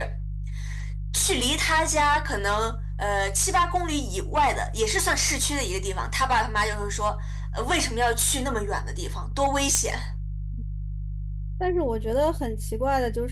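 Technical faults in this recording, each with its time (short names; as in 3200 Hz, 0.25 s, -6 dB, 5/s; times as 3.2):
hum 50 Hz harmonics 3 -31 dBFS
9.75 pop -6 dBFS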